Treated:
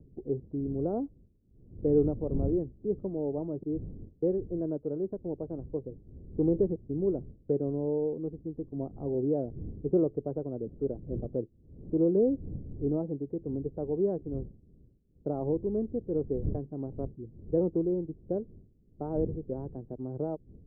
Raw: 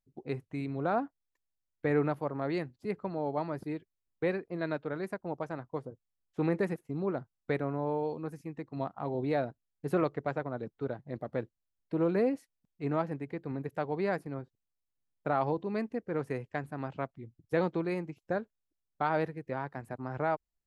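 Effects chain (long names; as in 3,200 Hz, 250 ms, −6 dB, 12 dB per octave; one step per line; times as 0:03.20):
wind on the microphone 120 Hz −44 dBFS
transistor ladder low-pass 510 Hz, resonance 40%
level +8.5 dB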